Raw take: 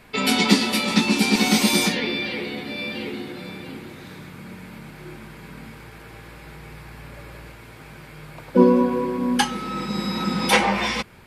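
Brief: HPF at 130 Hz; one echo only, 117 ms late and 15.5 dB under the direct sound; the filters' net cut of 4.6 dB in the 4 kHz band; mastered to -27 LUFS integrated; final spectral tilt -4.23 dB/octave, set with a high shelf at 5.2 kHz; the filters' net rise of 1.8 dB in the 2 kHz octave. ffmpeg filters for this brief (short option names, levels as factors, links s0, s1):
-af "highpass=130,equalizer=f=2000:t=o:g=4.5,equalizer=f=4000:t=o:g=-6,highshelf=f=5200:g=-3,aecho=1:1:117:0.168,volume=0.501"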